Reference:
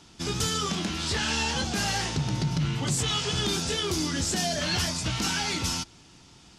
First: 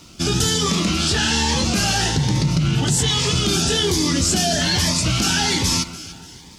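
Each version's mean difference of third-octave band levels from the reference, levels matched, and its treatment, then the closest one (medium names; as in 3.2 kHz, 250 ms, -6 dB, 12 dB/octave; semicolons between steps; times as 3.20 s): 2.5 dB: in parallel at -2 dB: compressor with a negative ratio -30 dBFS; on the sum: crossover distortion -58 dBFS; echo whose repeats swap between lows and highs 145 ms, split 1.6 kHz, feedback 64%, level -12 dB; Shepard-style phaser rising 1.2 Hz; trim +5.5 dB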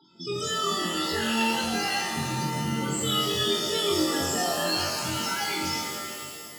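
8.0 dB: high-pass 320 Hz 6 dB/octave; loudest bins only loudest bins 16; on a send: flutter echo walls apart 3.8 m, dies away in 0.46 s; on the sum: pitch-shifted reverb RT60 2.2 s, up +7 st, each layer -2 dB, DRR 3 dB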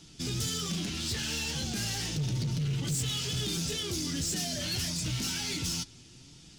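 5.0 dB: in parallel at +0.5 dB: peak limiter -27.5 dBFS, peak gain reduction 11 dB; on the sum: flange 1.4 Hz, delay 5.9 ms, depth 3 ms, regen +46%; hard clipper -26.5 dBFS, distortion -12 dB; peaking EQ 970 Hz -13 dB 2 oct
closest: first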